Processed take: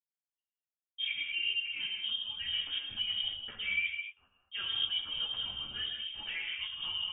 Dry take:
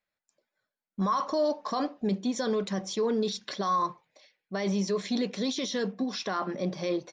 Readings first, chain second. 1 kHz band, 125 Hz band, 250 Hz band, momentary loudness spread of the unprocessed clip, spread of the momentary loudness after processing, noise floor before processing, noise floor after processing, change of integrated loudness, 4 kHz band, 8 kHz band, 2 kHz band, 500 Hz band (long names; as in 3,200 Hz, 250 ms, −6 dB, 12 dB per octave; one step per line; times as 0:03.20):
−24.0 dB, −21.0 dB, −33.0 dB, 5 LU, 6 LU, below −85 dBFS, below −85 dBFS, −3.5 dB, +8.0 dB, below −40 dB, +6.0 dB, below −30 dB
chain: noise gate with hold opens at −44 dBFS
fake sidechain pumping 108 BPM, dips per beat 1, −20 dB, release 147 ms
reverb whose tail is shaped and stops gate 260 ms flat, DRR 1.5 dB
voice inversion scrambler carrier 3,400 Hz
string-ensemble chorus
level −5.5 dB